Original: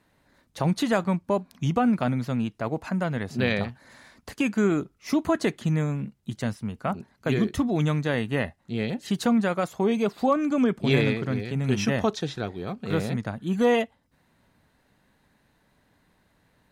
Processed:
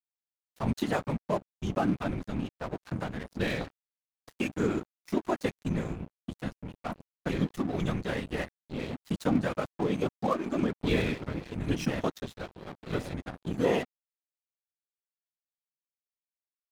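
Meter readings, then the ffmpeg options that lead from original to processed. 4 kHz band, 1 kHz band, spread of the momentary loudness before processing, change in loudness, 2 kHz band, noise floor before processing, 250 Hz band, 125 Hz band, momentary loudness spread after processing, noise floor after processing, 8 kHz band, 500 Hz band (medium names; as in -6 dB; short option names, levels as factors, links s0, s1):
-6.5 dB, -6.0 dB, 9 LU, -6.5 dB, -6.5 dB, -67 dBFS, -6.5 dB, -7.0 dB, 11 LU, under -85 dBFS, -7.5 dB, -6.0 dB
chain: -af "afftfilt=real='hypot(re,im)*cos(2*PI*random(0))':imag='hypot(re,im)*sin(2*PI*random(1))':win_size=512:overlap=0.75,aeval=exprs='sgn(val(0))*max(abs(val(0))-0.00891,0)':c=same,volume=1.19"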